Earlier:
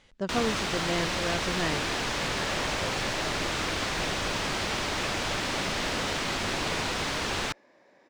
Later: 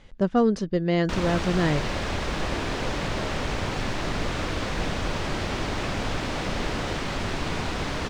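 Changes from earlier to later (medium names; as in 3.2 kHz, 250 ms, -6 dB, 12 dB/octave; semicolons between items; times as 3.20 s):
speech +5.5 dB; first sound: entry +0.80 s; master: add tilt EQ -2 dB/octave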